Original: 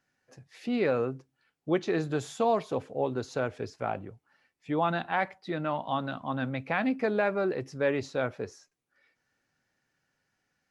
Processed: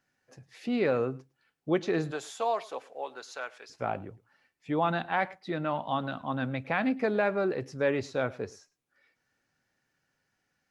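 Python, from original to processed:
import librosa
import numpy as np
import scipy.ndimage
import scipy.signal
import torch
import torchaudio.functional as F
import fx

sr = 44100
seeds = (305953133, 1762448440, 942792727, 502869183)

y = fx.highpass(x, sr, hz=fx.line((2.1, 510.0), (3.69, 1200.0)), slope=12, at=(2.1, 3.69), fade=0.02)
y = y + 10.0 ** (-22.5 / 20.0) * np.pad(y, (int(107 * sr / 1000.0), 0))[:len(y)]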